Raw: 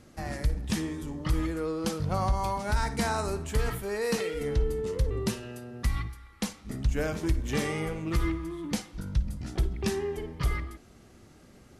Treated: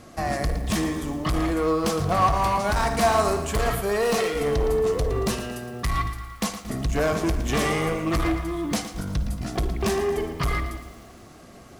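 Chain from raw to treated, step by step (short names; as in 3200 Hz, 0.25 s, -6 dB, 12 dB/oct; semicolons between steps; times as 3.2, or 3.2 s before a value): low shelf 200 Hz -4 dB; overloaded stage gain 29 dB; small resonant body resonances 690/1100 Hz, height 12 dB, ringing for 55 ms; lo-fi delay 0.114 s, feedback 55%, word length 9-bit, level -11 dB; gain +8.5 dB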